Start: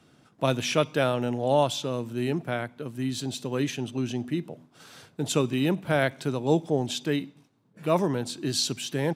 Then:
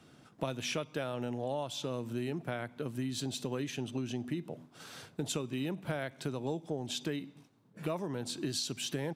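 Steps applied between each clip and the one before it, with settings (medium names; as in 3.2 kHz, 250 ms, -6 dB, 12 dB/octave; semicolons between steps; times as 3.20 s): compression 10:1, threshold -32 dBFS, peak gain reduction 15.5 dB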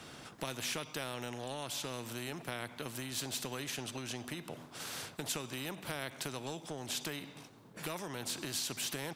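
spectrum-flattening compressor 2:1; trim -1 dB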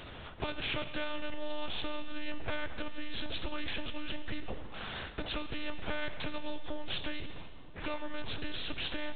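monotone LPC vocoder at 8 kHz 300 Hz; Schroeder reverb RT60 1.9 s, combs from 29 ms, DRR 11.5 dB; trim +4.5 dB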